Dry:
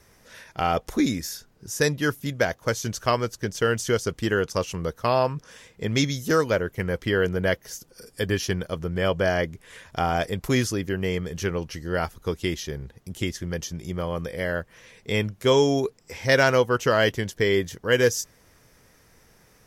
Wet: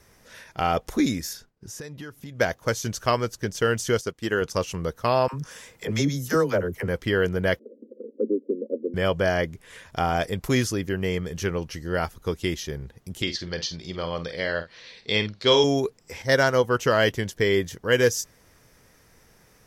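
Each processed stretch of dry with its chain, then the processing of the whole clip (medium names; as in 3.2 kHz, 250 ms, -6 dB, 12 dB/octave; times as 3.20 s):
1.33–2.40 s: expander -51 dBFS + treble shelf 6.2 kHz -7.5 dB + compression 12:1, threshold -34 dBFS
4.01–4.42 s: bass shelf 110 Hz -10 dB + upward expansion, over -44 dBFS
5.28–6.88 s: peaking EQ 3.2 kHz -6 dB 1.9 oct + phase dispersion lows, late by 56 ms, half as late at 470 Hz + tape noise reduction on one side only encoder only
7.59–8.94 s: Chebyshev band-pass 220–560 Hz, order 5 + bass shelf 430 Hz +8 dB + three bands compressed up and down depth 40%
13.22–15.64 s: resonant low-pass 4.3 kHz, resonance Q 6.2 + bass shelf 170 Hz -8.5 dB + doubling 48 ms -10.5 dB
16.22–16.64 s: peaking EQ 2.5 kHz -13.5 dB 0.22 oct + upward expansion, over -31 dBFS
whole clip: none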